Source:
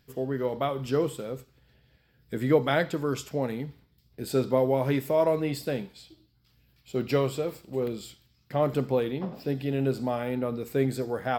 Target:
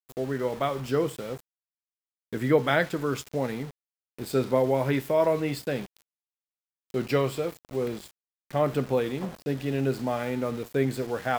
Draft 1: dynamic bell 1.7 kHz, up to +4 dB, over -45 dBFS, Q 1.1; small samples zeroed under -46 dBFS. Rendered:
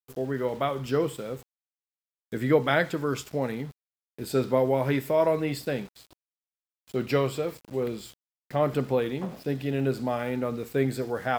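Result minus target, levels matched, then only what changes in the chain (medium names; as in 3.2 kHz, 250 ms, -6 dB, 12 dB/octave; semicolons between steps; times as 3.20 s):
small samples zeroed: distortion -8 dB
change: small samples zeroed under -39.5 dBFS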